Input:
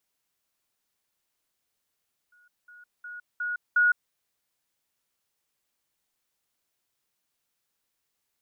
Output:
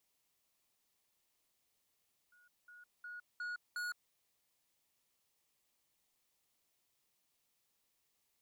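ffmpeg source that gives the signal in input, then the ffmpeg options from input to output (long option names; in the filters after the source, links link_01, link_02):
-f lavfi -i "aevalsrc='pow(10,(-57.5+10*floor(t/0.36))/20)*sin(2*PI*1450*t)*clip(min(mod(t,0.36),0.16-mod(t,0.36))/0.005,0,1)':duration=1.8:sample_rate=44100"
-af "equalizer=frequency=1500:width=5.1:gain=-8,asoftclip=type=tanh:threshold=-39.5dB"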